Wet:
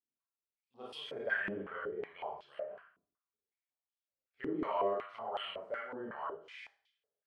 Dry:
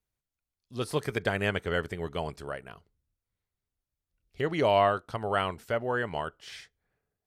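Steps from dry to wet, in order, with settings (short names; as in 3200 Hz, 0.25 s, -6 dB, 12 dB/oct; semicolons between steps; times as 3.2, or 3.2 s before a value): bin magnitudes rounded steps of 15 dB; 1.46–2.49 air absorption 140 m; Schroeder reverb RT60 0.54 s, combs from 28 ms, DRR -6.5 dB; stepped band-pass 5.4 Hz 290–3200 Hz; gain -6 dB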